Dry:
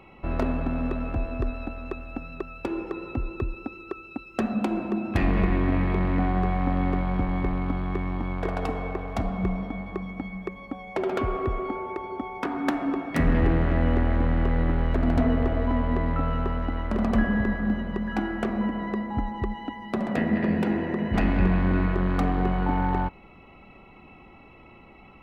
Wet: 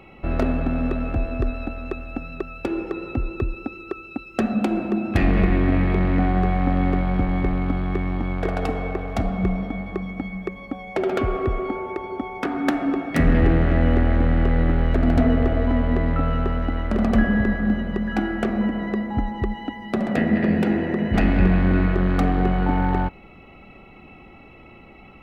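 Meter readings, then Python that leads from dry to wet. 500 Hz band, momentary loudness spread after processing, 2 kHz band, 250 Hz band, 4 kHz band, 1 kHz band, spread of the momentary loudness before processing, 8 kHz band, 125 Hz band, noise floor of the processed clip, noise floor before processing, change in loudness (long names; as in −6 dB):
+4.5 dB, 11 LU, +4.5 dB, +4.5 dB, +4.5 dB, +2.5 dB, 11 LU, can't be measured, +4.5 dB, −46 dBFS, −50 dBFS, +4.5 dB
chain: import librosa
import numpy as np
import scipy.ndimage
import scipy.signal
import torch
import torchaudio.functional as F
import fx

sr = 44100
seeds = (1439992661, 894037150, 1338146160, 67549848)

y = fx.peak_eq(x, sr, hz=1000.0, db=-8.0, octaves=0.28)
y = F.gain(torch.from_numpy(y), 4.5).numpy()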